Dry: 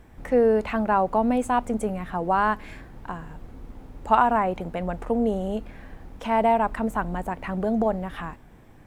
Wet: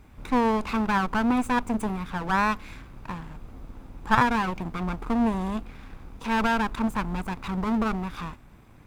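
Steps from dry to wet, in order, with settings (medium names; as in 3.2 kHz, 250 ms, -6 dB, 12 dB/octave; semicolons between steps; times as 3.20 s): comb filter that takes the minimum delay 0.81 ms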